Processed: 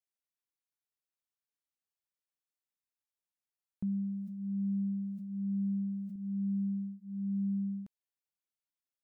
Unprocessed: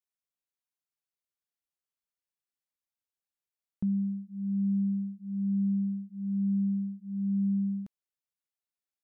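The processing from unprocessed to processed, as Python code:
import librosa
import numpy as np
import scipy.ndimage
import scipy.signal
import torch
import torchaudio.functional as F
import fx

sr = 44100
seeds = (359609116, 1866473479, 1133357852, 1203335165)

y = fx.sustainer(x, sr, db_per_s=23.0, at=(3.92, 6.16))
y = F.gain(torch.from_numpy(y), -5.0).numpy()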